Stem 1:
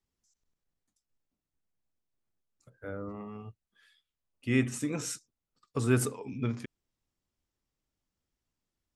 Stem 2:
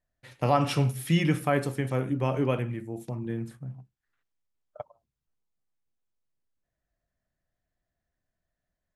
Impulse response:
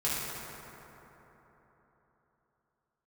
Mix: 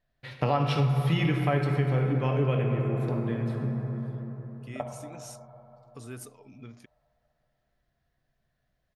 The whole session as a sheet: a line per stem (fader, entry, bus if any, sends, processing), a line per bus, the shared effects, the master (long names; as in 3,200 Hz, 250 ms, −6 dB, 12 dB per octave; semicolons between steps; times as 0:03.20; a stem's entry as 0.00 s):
−10.5 dB, 0.20 s, no send, high-shelf EQ 3,800 Hz +8.5 dB; notch filter 7,700 Hz, Q 5.5; downward compressor 1.5 to 1, threshold −37 dBFS, peak gain reduction 6.5 dB
+3.0 dB, 0.00 s, send −8.5 dB, high shelf with overshoot 5,500 Hz −10 dB, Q 1.5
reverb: on, RT60 3.9 s, pre-delay 3 ms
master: downward compressor 2.5 to 1, threshold −26 dBFS, peak gain reduction 10.5 dB